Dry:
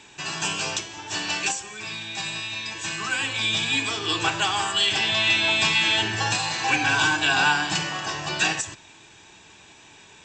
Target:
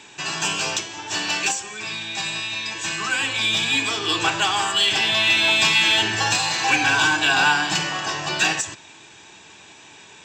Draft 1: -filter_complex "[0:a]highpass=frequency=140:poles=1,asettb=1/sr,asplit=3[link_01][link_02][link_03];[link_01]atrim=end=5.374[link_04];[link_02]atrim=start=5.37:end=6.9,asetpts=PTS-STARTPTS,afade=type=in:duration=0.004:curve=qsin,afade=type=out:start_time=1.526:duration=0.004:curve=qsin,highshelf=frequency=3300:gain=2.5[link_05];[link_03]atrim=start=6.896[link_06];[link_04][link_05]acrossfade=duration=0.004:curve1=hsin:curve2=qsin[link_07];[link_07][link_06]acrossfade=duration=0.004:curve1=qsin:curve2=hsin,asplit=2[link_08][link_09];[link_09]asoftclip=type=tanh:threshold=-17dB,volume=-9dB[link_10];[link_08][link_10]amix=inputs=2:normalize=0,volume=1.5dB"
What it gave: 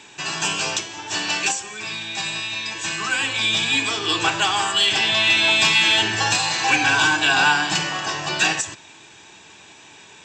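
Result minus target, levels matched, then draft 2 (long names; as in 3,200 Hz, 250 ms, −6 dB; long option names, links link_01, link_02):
soft clipping: distortion −7 dB
-filter_complex "[0:a]highpass=frequency=140:poles=1,asettb=1/sr,asplit=3[link_01][link_02][link_03];[link_01]atrim=end=5.374[link_04];[link_02]atrim=start=5.37:end=6.9,asetpts=PTS-STARTPTS,afade=type=in:duration=0.004:curve=qsin,afade=type=out:start_time=1.526:duration=0.004:curve=qsin,highshelf=frequency=3300:gain=2.5[link_05];[link_03]atrim=start=6.896[link_06];[link_04][link_05]acrossfade=duration=0.004:curve1=hsin:curve2=qsin[link_07];[link_07][link_06]acrossfade=duration=0.004:curve1=qsin:curve2=hsin,asplit=2[link_08][link_09];[link_09]asoftclip=type=tanh:threshold=-25dB,volume=-9dB[link_10];[link_08][link_10]amix=inputs=2:normalize=0,volume=1.5dB"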